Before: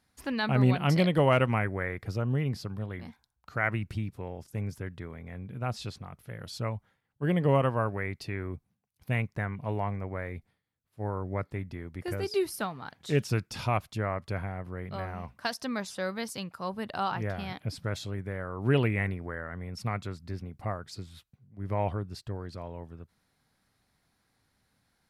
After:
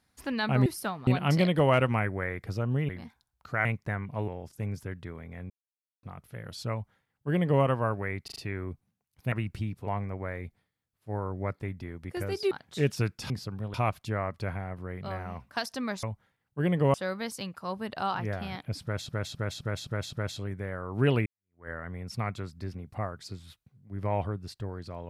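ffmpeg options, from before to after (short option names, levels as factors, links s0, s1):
-filter_complex "[0:a]asplit=24[s0][s1][s2][s3][s4][s5][s6][s7][s8][s9][s10][s11][s12][s13][s14][s15][s16][s17][s18][s19][s20][s21][s22][s23];[s0]atrim=end=0.662[s24];[s1]atrim=start=12.418:end=12.832[s25];[s2]atrim=start=0.658:end=2.482[s26];[s3]atrim=start=2.918:end=3.682[s27];[s4]atrim=start=9.148:end=9.782[s28];[s5]atrim=start=4.228:end=5.45,asetpts=PTS-STARTPTS,afade=t=out:st=1.218:d=0.004:c=hsin[s29];[s6]atrim=start=5.45:end=5.98,asetpts=PTS-STARTPTS,volume=0[s30];[s7]atrim=start=5.98:end=8.232,asetpts=PTS-STARTPTS,afade=t=in:d=0.004:c=hsin[s31];[s8]atrim=start=8.188:end=8.232[s32];[s9]atrim=start=8.188:end=8.232[s33];[s10]atrim=start=8.188:end=9.152[s34];[s11]atrim=start=3.678:end=4.232[s35];[s12]atrim=start=9.778:end=12.422[s36];[s13]atrim=start=12.828:end=13.622[s37];[s14]atrim=start=2.478:end=2.922[s38];[s15]atrim=start=13.618:end=15.912[s39];[s16]atrim=start=6.668:end=7.582[s40];[s17]atrim=start=15.908:end=18.062[s41];[s18]atrim=start=17.798:end=18.062[s42];[s19]atrim=start=17.798:end=18.062[s43];[s20]atrim=start=17.798:end=18.062[s44];[s21]atrim=start=17.798:end=18.062[s45];[s22]atrim=start=17.798:end=18.93,asetpts=PTS-STARTPTS,afade=t=out:st=1.128:d=0.004:c=hsin[s46];[s23]atrim=start=18.93,asetpts=PTS-STARTPTS,afade=t=in:d=0.43:c=exp[s47];[s24][s25]acrossfade=d=0.004:c1=hsin:c2=hsin[s48];[s48][s26]acrossfade=d=0.004:c1=hsin:c2=hsin[s49];[s49][s27]acrossfade=d=0.004:c1=hsin:c2=hsin[s50];[s50][s28]acrossfade=d=0.004:c1=hsin:c2=hsin[s51];[s29][s30][s31]concat=n=3:v=0:a=1[s52];[s51][s52]acrossfade=d=0.004:c1=hsin:c2=hsin[s53];[s53][s32]acrossfade=d=0.004:c1=hsin:c2=hsin[s54];[s54][s33]acrossfade=d=0.004:c1=hsin:c2=hsin[s55];[s55][s34]acrossfade=d=0.004:c1=hsin:c2=hsin[s56];[s56][s35]acrossfade=d=0.004:c1=hsin:c2=hsin[s57];[s57][s36]acrossfade=d=0.004:c1=hsin:c2=hsin[s58];[s58][s37]acrossfade=d=0.004:c1=hsin:c2=hsin[s59];[s59][s38]acrossfade=d=0.004:c1=hsin:c2=hsin[s60];[s60][s39]acrossfade=d=0.004:c1=hsin:c2=hsin[s61];[s61][s40]acrossfade=d=0.004:c1=hsin:c2=hsin[s62];[s62][s41]acrossfade=d=0.004:c1=hsin:c2=hsin[s63];[s63][s42]acrossfade=d=0.004:c1=hsin:c2=hsin[s64];[s64][s43]acrossfade=d=0.004:c1=hsin:c2=hsin[s65];[s65][s44]acrossfade=d=0.004:c1=hsin:c2=hsin[s66];[s66][s45]acrossfade=d=0.004:c1=hsin:c2=hsin[s67];[s46][s47]concat=n=2:v=0:a=1[s68];[s67][s68]acrossfade=d=0.004:c1=hsin:c2=hsin"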